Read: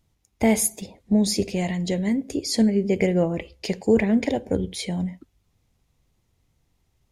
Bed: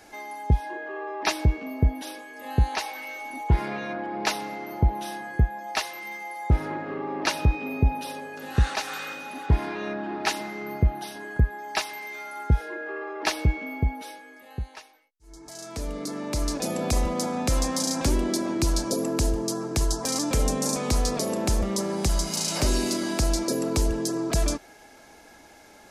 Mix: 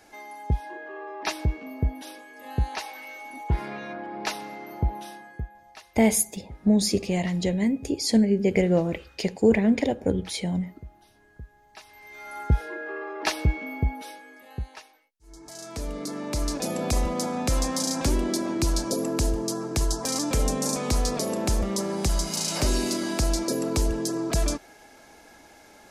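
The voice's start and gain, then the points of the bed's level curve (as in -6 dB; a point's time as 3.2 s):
5.55 s, -0.5 dB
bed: 4.95 s -4 dB
5.91 s -22 dB
11.72 s -22 dB
12.33 s -0.5 dB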